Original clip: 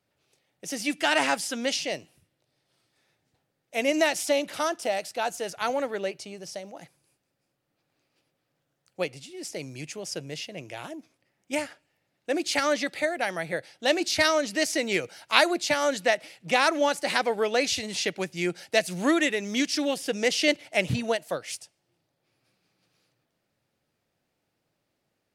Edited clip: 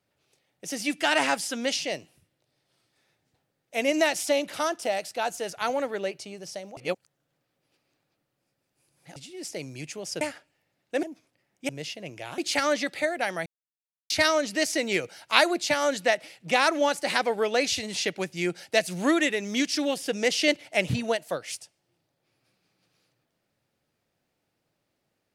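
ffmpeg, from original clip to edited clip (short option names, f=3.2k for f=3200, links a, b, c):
-filter_complex "[0:a]asplit=9[a][b][c][d][e][f][g][h][i];[a]atrim=end=6.772[j];[b]atrim=start=6.768:end=9.162,asetpts=PTS-STARTPTS,areverse[k];[c]atrim=start=9.158:end=10.212[l];[d]atrim=start=11.558:end=12.382[m];[e]atrim=start=10.898:end=11.562[n];[f]atrim=start=10.208:end=10.902[o];[g]atrim=start=12.378:end=13.46,asetpts=PTS-STARTPTS,afade=t=out:st=1.078:d=0.004:c=hsin[p];[h]atrim=start=13.46:end=14.1,asetpts=PTS-STARTPTS,volume=0[q];[i]atrim=start=14.1,asetpts=PTS-STARTPTS,afade=t=in:d=0.004:c=hsin[r];[j][k]acrossfade=d=0.004:c1=hsin:c2=hsin[s];[s][l]acrossfade=d=0.004:c1=hsin:c2=hsin[t];[t][m]acrossfade=d=0.004:c1=hsin:c2=hsin[u];[u][n]acrossfade=d=0.004:c1=hsin:c2=hsin[v];[v][o]acrossfade=d=0.004:c1=hsin:c2=hsin[w];[p][q][r]concat=n=3:v=0:a=1[x];[w][x]acrossfade=d=0.004:c1=hsin:c2=hsin"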